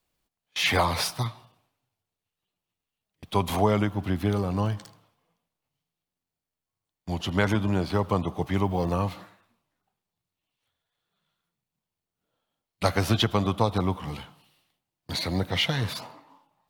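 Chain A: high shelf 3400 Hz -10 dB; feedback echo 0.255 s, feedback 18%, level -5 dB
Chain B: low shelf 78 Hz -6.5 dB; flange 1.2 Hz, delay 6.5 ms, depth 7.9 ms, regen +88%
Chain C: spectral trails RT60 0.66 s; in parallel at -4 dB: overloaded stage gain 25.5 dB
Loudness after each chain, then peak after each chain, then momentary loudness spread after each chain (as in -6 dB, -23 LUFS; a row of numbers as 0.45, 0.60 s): -27.0, -32.0, -22.0 LUFS; -8.0, -12.5, -6.0 dBFS; 14, 11, 12 LU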